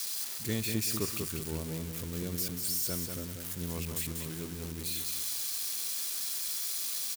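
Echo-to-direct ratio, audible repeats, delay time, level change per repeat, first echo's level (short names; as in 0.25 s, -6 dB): -5.0 dB, 4, 0.191 s, -8.5 dB, -5.5 dB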